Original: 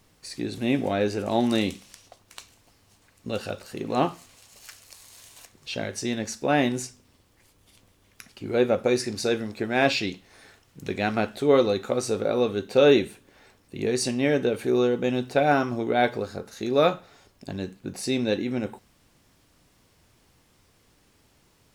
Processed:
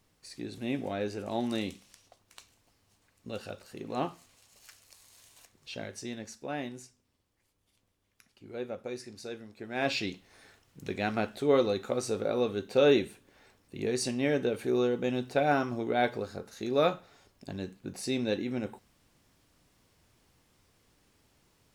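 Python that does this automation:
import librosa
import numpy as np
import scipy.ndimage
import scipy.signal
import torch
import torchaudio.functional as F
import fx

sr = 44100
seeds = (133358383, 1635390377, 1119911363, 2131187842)

y = fx.gain(x, sr, db=fx.line((5.83, -9.0), (6.79, -16.0), (9.55, -16.0), (9.98, -5.5)))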